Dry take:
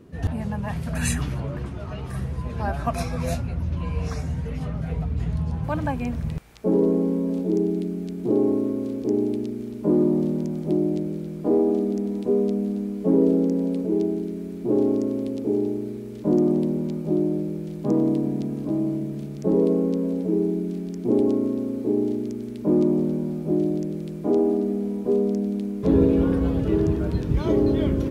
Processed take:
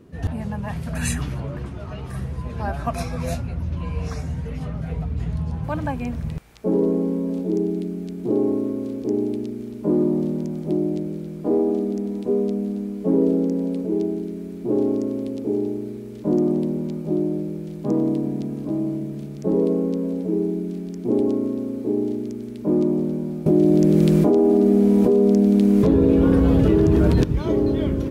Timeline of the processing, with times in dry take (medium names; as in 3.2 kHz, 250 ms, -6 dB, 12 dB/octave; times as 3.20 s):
23.46–27.24 s: level flattener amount 100%